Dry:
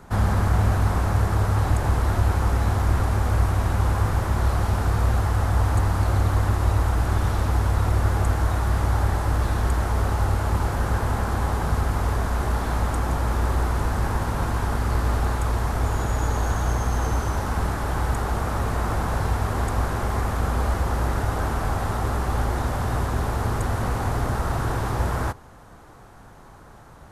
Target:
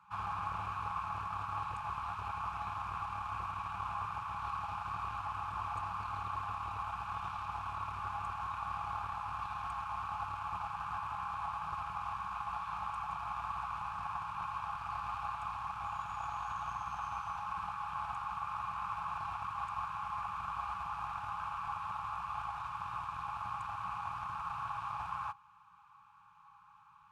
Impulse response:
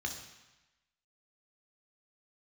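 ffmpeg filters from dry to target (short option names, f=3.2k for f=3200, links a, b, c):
-filter_complex "[0:a]afftfilt=real='re*(1-between(b*sr/4096,200,810))':imag='im*(1-between(b*sr/4096,200,810))':win_size=4096:overlap=0.75,aeval=exprs='0.355*(cos(1*acos(clip(val(0)/0.355,-1,1)))-cos(1*PI/2))+0.0112*(cos(7*acos(clip(val(0)/0.355,-1,1)))-cos(7*PI/2))':c=same,asplit=3[a][b][c];[a]bandpass=f=730:t=q:w=8,volume=0dB[d];[b]bandpass=f=1.09k:t=q:w=8,volume=-6dB[e];[c]bandpass=f=2.44k:t=q:w=8,volume=-9dB[f];[d][e][f]amix=inputs=3:normalize=0,volume=4.5dB"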